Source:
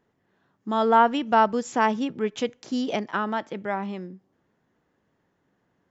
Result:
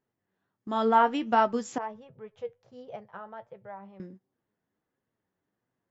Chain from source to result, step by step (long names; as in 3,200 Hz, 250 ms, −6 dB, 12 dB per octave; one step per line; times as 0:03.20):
flanger 1.4 Hz, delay 7.4 ms, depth 3.6 ms, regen +53%
noise gate −49 dBFS, range −9 dB
0:01.78–0:04.00: drawn EQ curve 130 Hz 0 dB, 290 Hz −29 dB, 490 Hz −5 dB, 8,100 Hz −29 dB